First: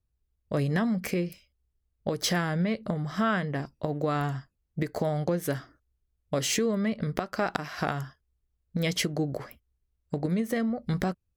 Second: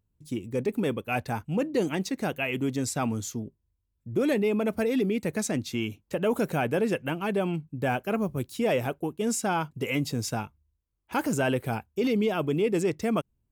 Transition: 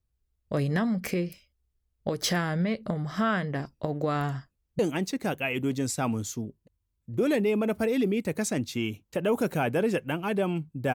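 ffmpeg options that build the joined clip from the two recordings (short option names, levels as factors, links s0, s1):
-filter_complex "[0:a]apad=whole_dur=10.94,atrim=end=10.94,atrim=end=4.792[s0];[1:a]atrim=start=1.768:end=7.92[s1];[s0][s1]acrossfade=d=0.004:c1=hsin:c2=hsin,asplit=2[s2][s3];[s3]afade=t=in:st=4.53:d=0.01,afade=t=out:st=4.79:d=0.01,aecho=0:1:470|940|1410|1880|2350|2820|3290|3760:0.125893|0.0881248|0.0616873|0.0431811|0.0302268|0.0211588|0.0148111|0.0103678[s4];[s2][s4]amix=inputs=2:normalize=0"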